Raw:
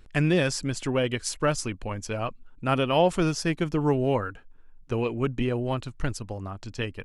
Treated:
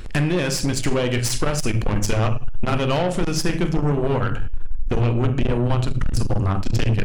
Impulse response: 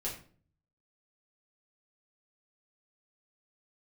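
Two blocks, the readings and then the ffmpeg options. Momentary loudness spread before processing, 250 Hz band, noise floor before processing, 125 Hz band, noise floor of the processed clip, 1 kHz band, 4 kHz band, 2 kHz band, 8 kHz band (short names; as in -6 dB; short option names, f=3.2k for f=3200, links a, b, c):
11 LU, +4.0 dB, -51 dBFS, +8.5 dB, -25 dBFS, +2.5 dB, +5.0 dB, +3.5 dB, +6.5 dB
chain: -filter_complex "[0:a]acompressor=threshold=-35dB:ratio=8,asplit=2[a][b];[b]asubboost=boost=5:cutoff=180[c];[1:a]atrim=start_sample=2205,adelay=28[d];[c][d]afir=irnorm=-1:irlink=0,volume=-9dB[e];[a][e]amix=inputs=2:normalize=0,apsyclip=25.5dB,aeval=exprs='(tanh(3.16*val(0)+0.45)-tanh(0.45))/3.16':c=same,bandreject=f=429.2:t=h:w=4,bandreject=f=858.4:t=h:w=4,bandreject=f=1.2876k:t=h:w=4,bandreject=f=1.7168k:t=h:w=4,bandreject=f=2.146k:t=h:w=4,bandreject=f=2.5752k:t=h:w=4,bandreject=f=3.0044k:t=h:w=4,bandreject=f=3.4336k:t=h:w=4,bandreject=f=3.8628k:t=h:w=4,bandreject=f=4.292k:t=h:w=4,bandreject=f=4.7212k:t=h:w=4,bandreject=f=5.1504k:t=h:w=4,bandreject=f=5.5796k:t=h:w=4,bandreject=f=6.0088k:t=h:w=4,bandreject=f=6.438k:t=h:w=4,bandreject=f=6.8672k:t=h:w=4,bandreject=f=7.2964k:t=h:w=4,bandreject=f=7.7256k:t=h:w=4,bandreject=f=8.1548k:t=h:w=4,bandreject=f=8.584k:t=h:w=4,bandreject=f=9.0132k:t=h:w=4,bandreject=f=9.4424k:t=h:w=4,bandreject=f=9.8716k:t=h:w=4,bandreject=f=10.3008k:t=h:w=4,bandreject=f=10.73k:t=h:w=4,bandreject=f=11.1592k:t=h:w=4,bandreject=f=11.5884k:t=h:w=4,bandreject=f=12.0176k:t=h:w=4,bandreject=f=12.4468k:t=h:w=4,volume=-5.5dB"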